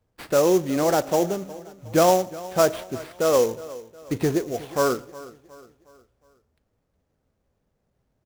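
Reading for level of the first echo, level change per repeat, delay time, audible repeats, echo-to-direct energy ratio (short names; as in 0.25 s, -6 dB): -18.5 dB, -7.0 dB, 0.363 s, 3, -17.5 dB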